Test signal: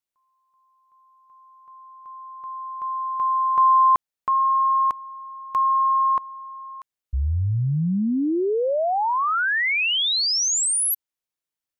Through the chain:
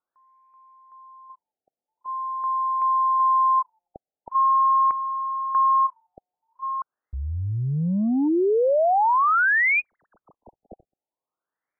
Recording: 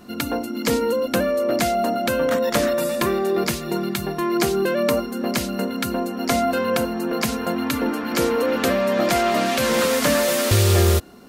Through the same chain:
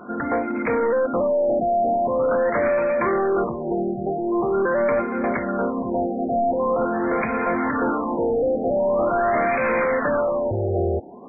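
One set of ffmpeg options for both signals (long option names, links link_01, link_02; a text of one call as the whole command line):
ffmpeg -i in.wav -filter_complex "[0:a]asplit=2[link_01][link_02];[link_02]highpass=frequency=720:poles=1,volume=24dB,asoftclip=type=tanh:threshold=-6.5dB[link_03];[link_01][link_03]amix=inputs=2:normalize=0,lowpass=frequency=3400:poles=1,volume=-6dB,afftfilt=real='re*lt(b*sr/1024,800*pow(2600/800,0.5+0.5*sin(2*PI*0.44*pts/sr)))':imag='im*lt(b*sr/1024,800*pow(2600/800,0.5+0.5*sin(2*PI*0.44*pts/sr)))':win_size=1024:overlap=0.75,volume=-6dB" out.wav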